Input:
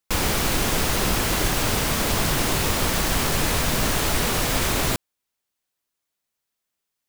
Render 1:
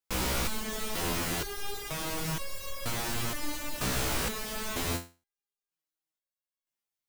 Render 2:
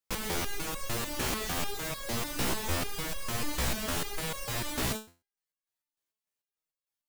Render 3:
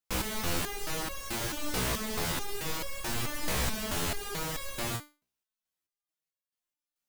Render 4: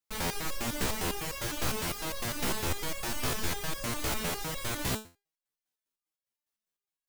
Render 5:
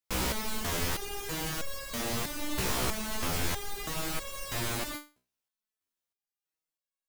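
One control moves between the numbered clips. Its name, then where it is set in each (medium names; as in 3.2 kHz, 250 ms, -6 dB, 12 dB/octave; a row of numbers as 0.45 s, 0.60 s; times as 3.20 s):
resonator arpeggio, rate: 2.1 Hz, 6.7 Hz, 4.6 Hz, 9.9 Hz, 3.1 Hz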